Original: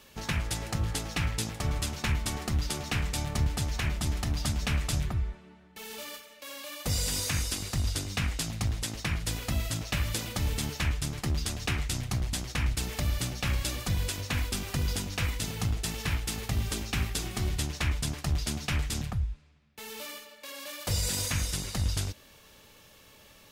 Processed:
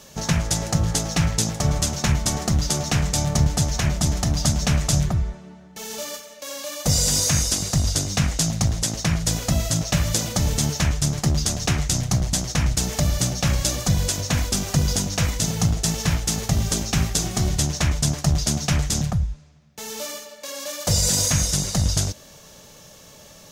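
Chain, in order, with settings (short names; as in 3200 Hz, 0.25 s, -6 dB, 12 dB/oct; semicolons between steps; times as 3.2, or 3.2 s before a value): fifteen-band EQ 160 Hz +9 dB, 630 Hz +7 dB, 2500 Hz -4 dB, 6300 Hz +10 dB; gain +6 dB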